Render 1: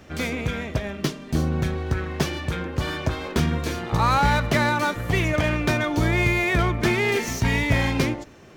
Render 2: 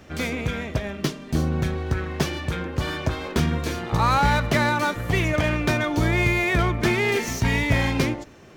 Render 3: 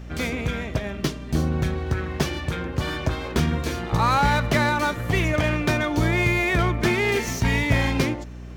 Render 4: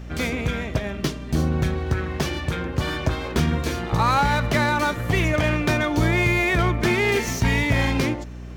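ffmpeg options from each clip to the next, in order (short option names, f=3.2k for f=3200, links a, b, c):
-af anull
-af "aeval=exprs='val(0)+0.0158*(sin(2*PI*60*n/s)+sin(2*PI*2*60*n/s)/2+sin(2*PI*3*60*n/s)/3+sin(2*PI*4*60*n/s)/4+sin(2*PI*5*60*n/s)/5)':c=same"
-af "alimiter=level_in=10dB:limit=-1dB:release=50:level=0:latency=1,volume=-8.5dB"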